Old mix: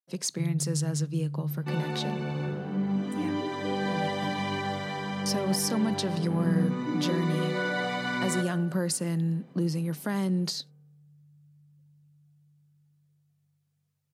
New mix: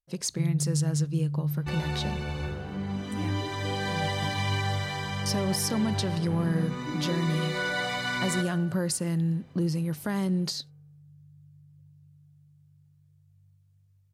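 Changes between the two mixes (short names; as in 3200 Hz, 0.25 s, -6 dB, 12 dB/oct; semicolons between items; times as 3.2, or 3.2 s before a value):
second sound: add tilt +2.5 dB/oct; master: remove steep high-pass 150 Hz 36 dB/oct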